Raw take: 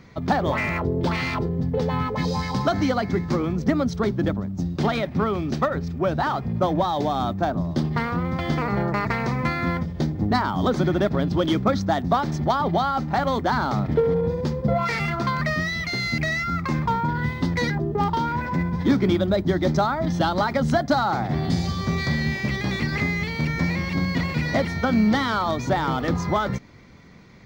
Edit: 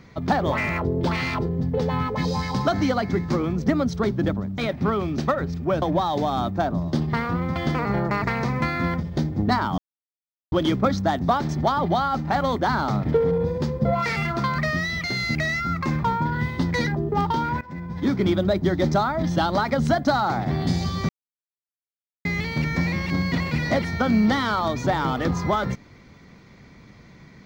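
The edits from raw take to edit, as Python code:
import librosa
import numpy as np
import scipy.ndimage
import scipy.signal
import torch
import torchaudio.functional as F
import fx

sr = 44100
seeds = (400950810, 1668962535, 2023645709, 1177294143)

y = fx.edit(x, sr, fx.cut(start_s=4.58, length_s=0.34),
    fx.cut(start_s=6.16, length_s=0.49),
    fx.silence(start_s=10.61, length_s=0.74),
    fx.fade_in_from(start_s=18.44, length_s=0.74, floor_db=-18.5),
    fx.silence(start_s=21.92, length_s=1.16), tone=tone)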